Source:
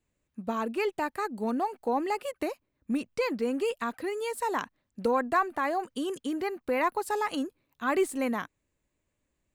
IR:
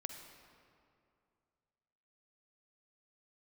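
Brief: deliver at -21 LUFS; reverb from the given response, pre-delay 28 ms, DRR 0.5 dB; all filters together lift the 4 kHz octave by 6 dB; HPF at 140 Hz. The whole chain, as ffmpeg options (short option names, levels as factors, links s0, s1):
-filter_complex "[0:a]highpass=140,equalizer=f=4000:t=o:g=8,asplit=2[s0][s1];[1:a]atrim=start_sample=2205,adelay=28[s2];[s1][s2]afir=irnorm=-1:irlink=0,volume=1.19[s3];[s0][s3]amix=inputs=2:normalize=0,volume=2.24"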